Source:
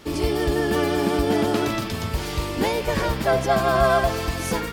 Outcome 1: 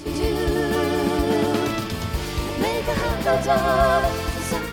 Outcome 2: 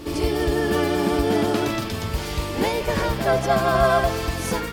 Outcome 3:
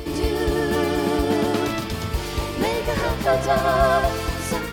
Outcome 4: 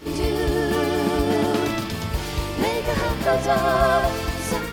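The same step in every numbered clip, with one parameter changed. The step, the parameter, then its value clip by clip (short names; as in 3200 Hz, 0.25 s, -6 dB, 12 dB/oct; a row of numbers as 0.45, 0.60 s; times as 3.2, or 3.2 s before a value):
pre-echo, time: 157, 70, 240, 42 ms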